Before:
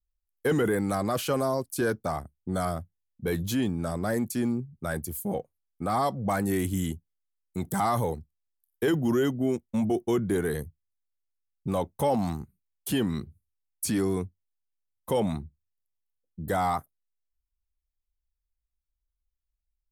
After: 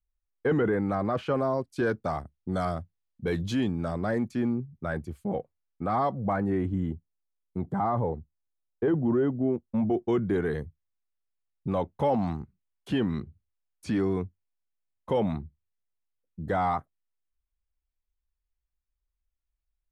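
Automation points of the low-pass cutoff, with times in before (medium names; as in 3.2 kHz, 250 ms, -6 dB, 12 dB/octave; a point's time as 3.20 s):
1.28 s 2 kHz
2.19 s 4.6 kHz
3.58 s 4.6 kHz
4.46 s 2.5 kHz
5.88 s 2.5 kHz
6.81 s 1.1 kHz
9.53 s 1.1 kHz
10.16 s 2.8 kHz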